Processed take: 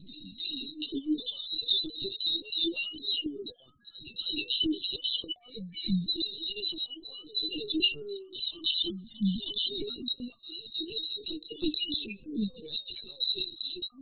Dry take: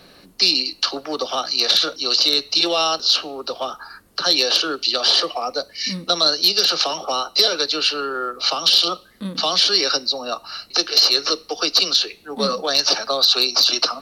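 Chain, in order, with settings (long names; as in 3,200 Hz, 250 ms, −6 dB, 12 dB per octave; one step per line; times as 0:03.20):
expanding power law on the bin magnitudes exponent 3.3
downward compressor 12 to 1, threshold −21 dBFS, peak gain reduction 10.5 dB
elliptic band-stop filter 320–2,800 Hz, stop band 40 dB
linear-prediction vocoder at 8 kHz pitch kept
backwards echo 314 ms −13.5 dB
level +2.5 dB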